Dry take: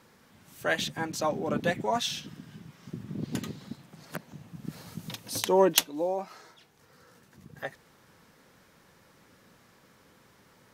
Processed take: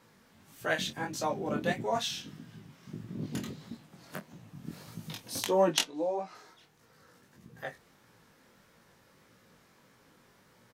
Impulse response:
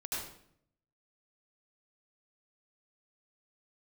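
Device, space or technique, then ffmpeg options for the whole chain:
double-tracked vocal: -filter_complex "[0:a]asplit=2[a][b];[b]adelay=26,volume=-11dB[c];[a][c]amix=inputs=2:normalize=0,flanger=delay=17:depth=6.2:speed=1.6,asettb=1/sr,asplit=3[d][e][f];[d]atrim=end=5.714[g];[e]atrim=start=5.71:end=6.35,asetpts=PTS-STARTPTS,afade=t=in:d=0.004:c=qsin,afade=t=out:st=0.636:d=0.004:c=qsin,lowpass=7.6k[h];[f]atrim=start=6.346[i];[g][h]acrossfade=d=0.004:c1=hsin:c2=qsin[j];[j][i]acrossfade=d=0.004:c1=qsin:c2=hsin"

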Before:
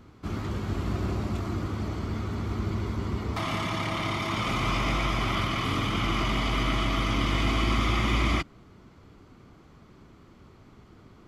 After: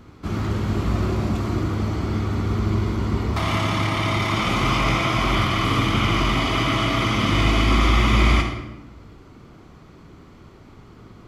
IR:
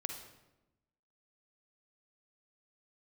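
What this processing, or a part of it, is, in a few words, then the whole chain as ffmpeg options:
bathroom: -filter_complex "[1:a]atrim=start_sample=2205[a];[0:a][a]afir=irnorm=-1:irlink=0,volume=7dB"

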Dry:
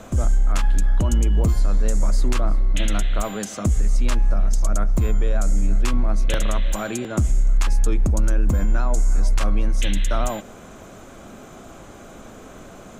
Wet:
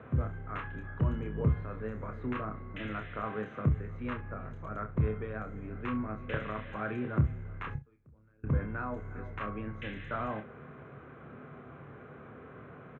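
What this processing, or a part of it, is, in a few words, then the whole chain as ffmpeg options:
bass cabinet: -filter_complex "[0:a]asettb=1/sr,asplit=3[a][b][c];[a]atrim=end=7.754[d];[b]atrim=start=7.75:end=8.44,asetpts=PTS-STARTPTS,afade=t=in:d=0.004:c=qsin,afade=t=out:st=0.686:d=0.004:c=qsin,agate=range=-30dB:threshold=-7dB:ratio=16:detection=peak[e];[c]atrim=start=8.436[f];[d][e]acrossfade=d=0.004:c1=hsin:c2=qsin[g];[g][f]acrossfade=d=0.004:c1=qsin:c2=hsin,highpass=f=77:w=0.5412,highpass=f=77:w=1.3066,equalizer=f=91:t=q:w=4:g=-4,equalizer=f=140:t=q:w=4:g=8,equalizer=f=200:t=q:w=4:g=-9,equalizer=f=850:t=q:w=4:g=-8,lowpass=f=2.1k:w=0.5412,lowpass=f=2.1k:w=1.3066,superequalizer=6b=0.562:8b=0.501:14b=0.282:16b=2.51,aecho=1:1:28|65:0.473|0.158,volume=-5.5dB"

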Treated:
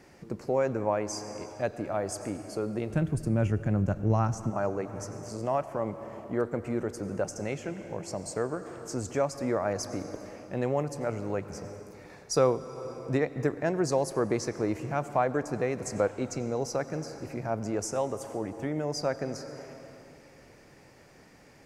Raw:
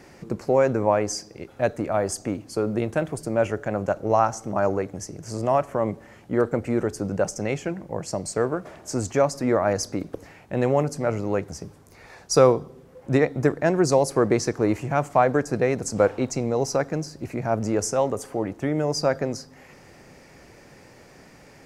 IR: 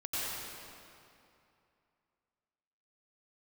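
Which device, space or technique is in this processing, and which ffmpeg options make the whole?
ducked reverb: -filter_complex "[0:a]asplit=3[a][b][c];[a]afade=t=out:st=2.9:d=0.02[d];[b]asubboost=boost=8:cutoff=220,afade=t=in:st=2.9:d=0.02,afade=t=out:st=4.49:d=0.02[e];[c]afade=t=in:st=4.49:d=0.02[f];[d][e][f]amix=inputs=3:normalize=0,asplit=3[g][h][i];[1:a]atrim=start_sample=2205[j];[h][j]afir=irnorm=-1:irlink=0[k];[i]apad=whole_len=955181[l];[k][l]sidechaincompress=threshold=-26dB:ratio=8:attack=45:release=414,volume=-11.5dB[m];[g][m]amix=inputs=2:normalize=0,volume=-8dB"

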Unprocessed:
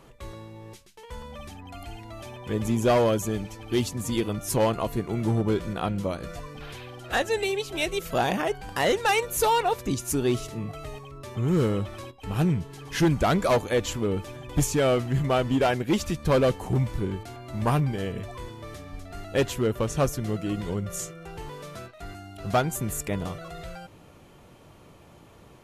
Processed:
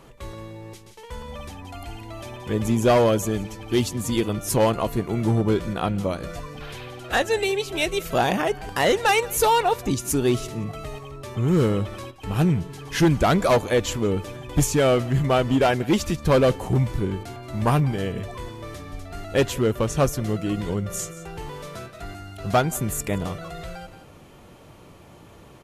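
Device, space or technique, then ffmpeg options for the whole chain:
ducked delay: -filter_complex "[0:a]asplit=3[a][b][c];[b]adelay=175,volume=-8.5dB[d];[c]apad=whole_len=1138303[e];[d][e]sidechaincompress=threshold=-36dB:ratio=8:attack=16:release=920[f];[a][f]amix=inputs=2:normalize=0,volume=3.5dB"

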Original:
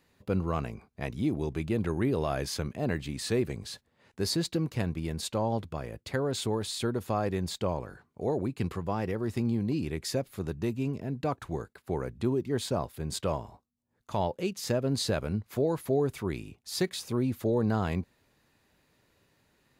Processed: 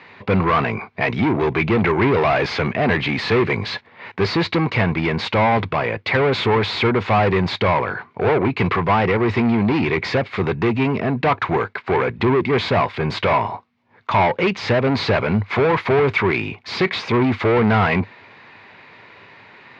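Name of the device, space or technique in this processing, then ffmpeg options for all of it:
overdrive pedal into a guitar cabinet: -filter_complex "[0:a]asplit=2[a][b];[b]highpass=f=720:p=1,volume=26dB,asoftclip=type=tanh:threshold=-17dB[c];[a][c]amix=inputs=2:normalize=0,lowpass=f=1.7k:p=1,volume=-6dB,highpass=83,equalizer=f=100:t=q:w=4:g=8,equalizer=f=300:t=q:w=4:g=-4,equalizer=f=560:t=q:w=4:g=-4,equalizer=f=990:t=q:w=4:g=4,equalizer=f=2.2k:t=q:w=4:g=9,lowpass=f=4.4k:w=0.5412,lowpass=f=4.4k:w=1.3066,volume=8.5dB"

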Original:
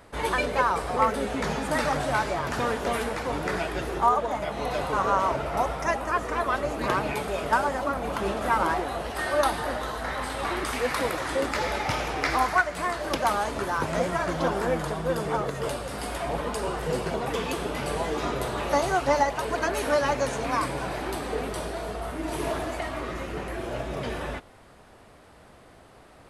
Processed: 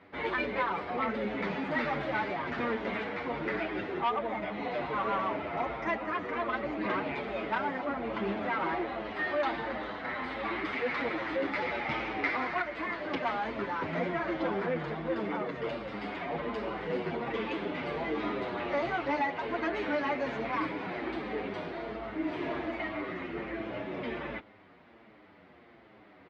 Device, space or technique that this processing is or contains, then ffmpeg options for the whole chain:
barber-pole flanger into a guitar amplifier: -filter_complex "[0:a]asplit=2[a][b];[b]adelay=7.7,afreqshift=-1.3[c];[a][c]amix=inputs=2:normalize=1,asoftclip=type=tanh:threshold=-21.5dB,highpass=100,equalizer=f=130:t=q:w=4:g=-4,equalizer=f=210:t=q:w=4:g=6,equalizer=f=320:t=q:w=4:g=7,equalizer=f=2.1k:t=q:w=4:g=8,lowpass=f=3.8k:w=0.5412,lowpass=f=3.8k:w=1.3066,volume=-3dB"

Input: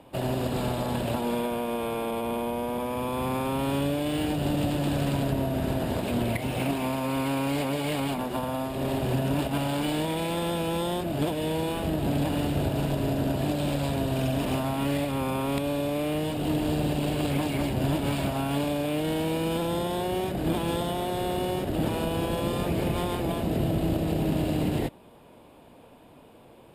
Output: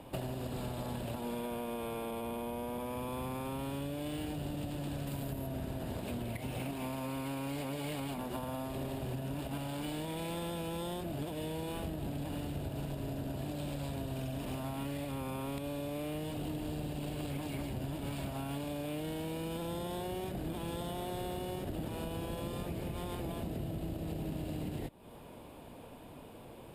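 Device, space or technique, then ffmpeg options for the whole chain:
ASMR close-microphone chain: -filter_complex "[0:a]asettb=1/sr,asplit=3[a][b][c];[a]atrim=end=5.074[d];[b]atrim=start=5.07:end=5.47,asetpts=PTS-STARTPTS,afade=t=in:d=0.004:c=qsin,afade=t=out:st=0.396:d=0.004:c=qsin,highshelf=f=10k:g=11[e];[c]atrim=start=5.466[f];[d][e]acrossfade=d=0.004:c1=hsin:c2=qsin[g];[g][f]acrossfade=d=0.004:c1=qsin:c2=hsin,lowshelf=f=130:g=6,acompressor=threshold=-36dB:ratio=8,highshelf=f=6.6k:g=4.5"

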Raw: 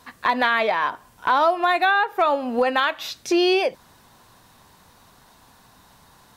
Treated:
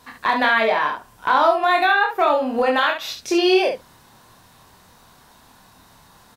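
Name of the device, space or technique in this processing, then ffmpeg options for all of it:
slapback doubling: -filter_complex "[0:a]asplit=3[a][b][c];[b]adelay=27,volume=-3.5dB[d];[c]adelay=70,volume=-6.5dB[e];[a][d][e]amix=inputs=3:normalize=0"

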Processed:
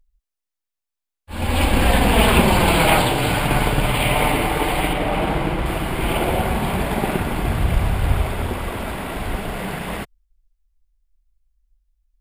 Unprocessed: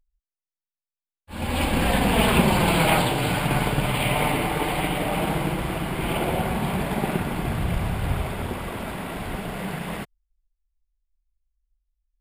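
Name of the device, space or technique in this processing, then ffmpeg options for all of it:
low shelf boost with a cut just above: -filter_complex "[0:a]asettb=1/sr,asplit=3[a][b][c];[a]atrim=end=4.934[d];[b]atrim=start=4.93:end=5.66,asetpts=PTS-STARTPTS,afade=t=in:d=0.004:c=qsin,afade=t=out:st=0.726:d=0.004:c=qsin,highshelf=f=6.2k:g=-11.5[e];[c]atrim=start=5.656[f];[d][e]acrossfade=d=0.004:c1=hsin:c2=qsin[g];[g][f]acrossfade=d=0.004:c1=qsin:c2=hsin,lowshelf=f=100:g=6,equalizer=f=160:t=o:w=0.84:g=-6,volume=4.5dB"

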